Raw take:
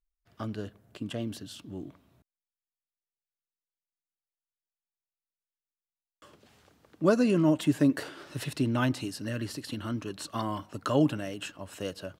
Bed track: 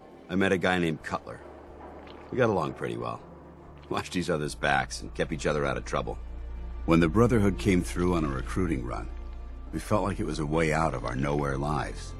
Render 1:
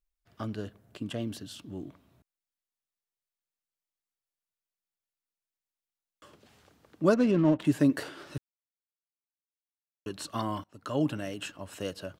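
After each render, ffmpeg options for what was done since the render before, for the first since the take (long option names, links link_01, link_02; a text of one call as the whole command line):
ffmpeg -i in.wav -filter_complex "[0:a]asettb=1/sr,asplit=3[link_01][link_02][link_03];[link_01]atrim=end=7.144[link_04];[link_02]atrim=start=7.14:end=7.65,asetpts=PTS-STARTPTS,afade=type=in:duration=0.004:curve=qsin,afade=type=out:start_time=0.506:duration=0.004:curve=qsin,adynamicsmooth=sensitivity=4.5:basefreq=920[link_05];[link_03]atrim=start=7.646[link_06];[link_04][link_05]acrossfade=duration=0.004:curve1=hsin:curve2=qsin[link_07];[link_07][link_06]acrossfade=duration=0.004:curve1=qsin:curve2=hsin,asplit=4[link_08][link_09][link_10][link_11];[link_08]atrim=end=8.38,asetpts=PTS-STARTPTS,afade=type=out:start_time=8.376:duration=0.004:curve=hsin[link_12];[link_09]atrim=start=8.38:end=10.06,asetpts=PTS-STARTPTS,volume=0[link_13];[link_10]atrim=start=10.06:end=10.64,asetpts=PTS-STARTPTS,afade=type=in:duration=0.004:curve=hsin,afade=type=out:start_time=0.576:duration=0.004:curve=hsin:silence=0.0749894[link_14];[link_11]atrim=start=10.64,asetpts=PTS-STARTPTS,afade=type=in:duration=0.61:silence=0.0749894[link_15];[link_12][link_13][link_14][link_15]concat=n=4:v=0:a=1" out.wav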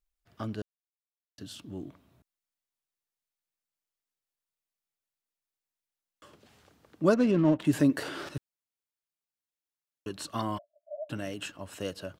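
ffmpeg -i in.wav -filter_complex "[0:a]asettb=1/sr,asplit=3[link_01][link_02][link_03];[link_01]atrim=end=7.734[link_04];[link_02]atrim=start=7.73:end=8.29,asetpts=PTS-STARTPTS,afade=type=in:duration=0.004:curve=qsin,afade=type=out:start_time=0.556:duration=0.004:curve=qsin,acompressor=mode=upward:threshold=-28dB:ratio=2.5:attack=3.2:release=140:knee=2.83:detection=peak[link_05];[link_03]atrim=start=8.286[link_06];[link_04][link_05]acrossfade=duration=0.004:curve1=hsin:curve2=qsin[link_07];[link_07][link_06]acrossfade=duration=0.004:curve1=qsin:curve2=hsin,asplit=3[link_08][link_09][link_10];[link_08]afade=type=out:start_time=10.57:duration=0.02[link_11];[link_09]asuperpass=centerf=630:order=12:qfactor=5.3,afade=type=in:start_time=10.57:duration=0.02,afade=type=out:start_time=11.09:duration=0.02[link_12];[link_10]afade=type=in:start_time=11.09:duration=0.02[link_13];[link_11][link_12][link_13]amix=inputs=3:normalize=0,asplit=3[link_14][link_15][link_16];[link_14]atrim=end=0.62,asetpts=PTS-STARTPTS,afade=type=out:start_time=0.616:duration=0.004:curve=hsin[link_17];[link_15]atrim=start=0.62:end=1.38,asetpts=PTS-STARTPTS,volume=0[link_18];[link_16]atrim=start=1.38,asetpts=PTS-STARTPTS,afade=type=in:duration=0.004:curve=hsin[link_19];[link_17][link_18][link_19]concat=n=3:v=0:a=1" out.wav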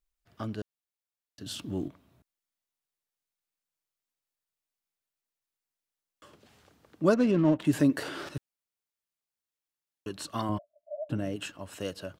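ffmpeg -i in.wav -filter_complex "[0:a]asettb=1/sr,asplit=3[link_01][link_02][link_03];[link_01]atrim=end=1.464[link_04];[link_02]atrim=start=1.46:end=1.88,asetpts=PTS-STARTPTS,afade=type=in:duration=0.004:curve=qsin,afade=type=out:start_time=0.416:duration=0.004:curve=qsin,acontrast=71[link_05];[link_03]atrim=start=1.876[link_06];[link_04][link_05]acrossfade=duration=0.004:curve1=hsin:curve2=qsin[link_07];[link_07][link_06]acrossfade=duration=0.004:curve1=qsin:curve2=hsin,asettb=1/sr,asplit=3[link_08][link_09][link_10];[link_08]atrim=end=10.494[link_11];[link_09]atrim=start=10.49:end=11.36,asetpts=PTS-STARTPTS,afade=type=in:duration=0.004:curve=qsin,afade=type=out:start_time=0.866:duration=0.004:curve=qsin,tiltshelf=frequency=780:gain=6.5[link_12];[link_10]atrim=start=11.356[link_13];[link_11][link_12]acrossfade=duration=0.004:curve1=hsin:curve2=qsin[link_14];[link_14][link_13]acrossfade=duration=0.004:curve1=qsin:curve2=hsin" out.wav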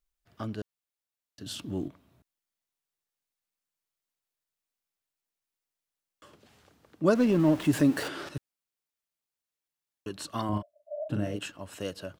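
ffmpeg -i in.wav -filter_complex "[0:a]asettb=1/sr,asplit=3[link_01][link_02][link_03];[link_01]atrim=end=7.154[link_04];[link_02]atrim=start=7.15:end=8.08,asetpts=PTS-STARTPTS,afade=type=in:duration=0.004:curve=qsin,afade=type=out:start_time=0.926:duration=0.004:curve=qsin,aeval=exprs='val(0)+0.5*0.015*sgn(val(0))':channel_layout=same[link_05];[link_03]atrim=start=8.076[link_06];[link_04][link_05]acrossfade=duration=0.004:curve1=hsin:curve2=qsin[link_07];[link_07][link_06]acrossfade=duration=0.004:curve1=qsin:curve2=hsin,asettb=1/sr,asplit=3[link_08][link_09][link_10];[link_08]atrim=end=10.494[link_11];[link_09]atrim=start=10.49:end=11.39,asetpts=PTS-STARTPTS,afade=type=in:duration=0.004:curve=qsin,afade=type=out:start_time=0.896:duration=0.004:curve=qsin,asplit=2[link_12][link_13];[link_13]adelay=39,volume=-4.5dB[link_14];[link_12][link_14]amix=inputs=2:normalize=0,atrim=end_sample=39690[link_15];[link_10]atrim=start=11.386[link_16];[link_11][link_15]acrossfade=duration=0.004:curve1=hsin:curve2=qsin[link_17];[link_17][link_16]acrossfade=duration=0.004:curve1=qsin:curve2=hsin" out.wav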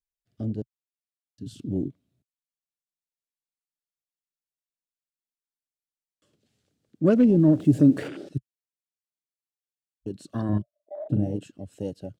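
ffmpeg -i in.wav -af "afwtdn=0.0178,equalizer=frequency=125:width_type=o:width=1:gain=8,equalizer=frequency=250:width_type=o:width=1:gain=5,equalizer=frequency=500:width_type=o:width=1:gain=3,equalizer=frequency=1000:width_type=o:width=1:gain=-9,equalizer=frequency=4000:width_type=o:width=1:gain=4,equalizer=frequency=8000:width_type=o:width=1:gain=7" out.wav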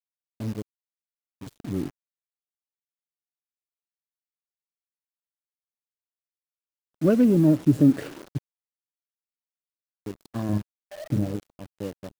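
ffmpeg -i in.wav -af "aeval=exprs='sgn(val(0))*max(abs(val(0))-0.0075,0)':channel_layout=same,acrusher=bits=8:dc=4:mix=0:aa=0.000001" out.wav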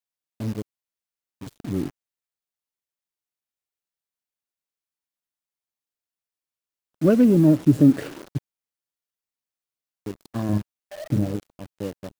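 ffmpeg -i in.wav -af "volume=2.5dB" out.wav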